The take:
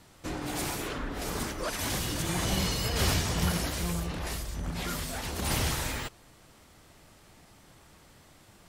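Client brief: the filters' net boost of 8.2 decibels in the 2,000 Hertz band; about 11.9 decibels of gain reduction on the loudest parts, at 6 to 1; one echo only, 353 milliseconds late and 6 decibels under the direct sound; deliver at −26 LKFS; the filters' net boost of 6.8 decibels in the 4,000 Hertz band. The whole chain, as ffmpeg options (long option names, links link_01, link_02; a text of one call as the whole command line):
ffmpeg -i in.wav -af "equalizer=frequency=2000:width_type=o:gain=8.5,equalizer=frequency=4000:width_type=o:gain=6,acompressor=threshold=-33dB:ratio=6,aecho=1:1:353:0.501,volume=8.5dB" out.wav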